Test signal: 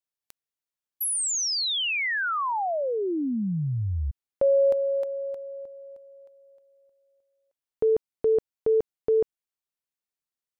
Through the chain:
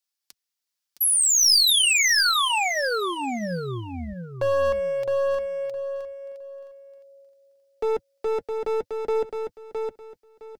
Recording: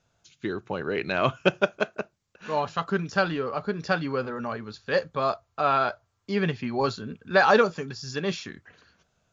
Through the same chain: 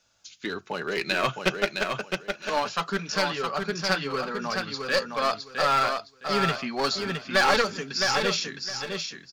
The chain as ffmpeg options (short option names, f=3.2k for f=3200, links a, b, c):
-filter_complex "[0:a]asplit=2[a][b];[b]alimiter=limit=-13dB:level=0:latency=1:release=430,volume=-0.5dB[c];[a][c]amix=inputs=2:normalize=0,equalizer=f=5k:w=2.2:g=6,acrossover=split=190[d][e];[d]flanger=delay=16.5:depth=6.6:speed=1.1[f];[e]aeval=exprs='clip(val(0),-1,0.119)':c=same[g];[f][g]amix=inputs=2:normalize=0,tiltshelf=f=1.1k:g=-5,flanger=delay=3.5:depth=1.9:regen=-44:speed=0.41:shape=sinusoidal,aecho=1:1:663|1326|1989:0.562|0.124|0.0272"